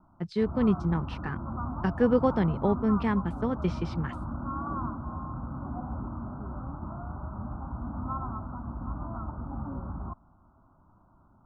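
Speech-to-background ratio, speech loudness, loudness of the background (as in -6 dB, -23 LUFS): 9.0 dB, -28.0 LUFS, -37.0 LUFS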